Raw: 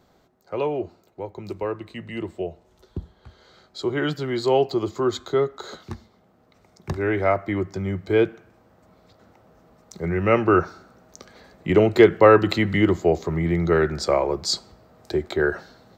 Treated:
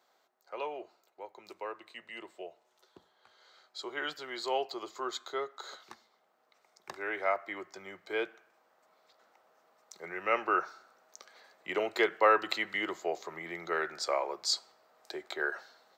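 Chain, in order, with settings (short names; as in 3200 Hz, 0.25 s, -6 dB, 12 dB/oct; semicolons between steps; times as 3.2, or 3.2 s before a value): HPF 740 Hz 12 dB/oct; gain -6 dB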